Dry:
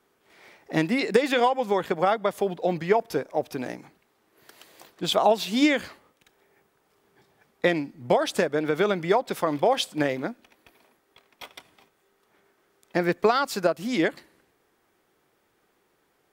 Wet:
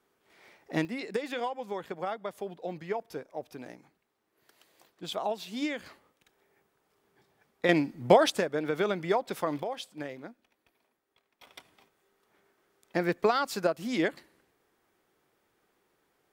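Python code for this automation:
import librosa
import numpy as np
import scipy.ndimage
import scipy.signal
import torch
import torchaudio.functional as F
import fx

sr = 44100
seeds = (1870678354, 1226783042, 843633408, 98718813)

y = fx.gain(x, sr, db=fx.steps((0.0, -5.5), (0.85, -12.0), (5.86, -6.0), (7.69, 2.0), (8.3, -5.5), (9.63, -14.0), (11.47, -4.5)))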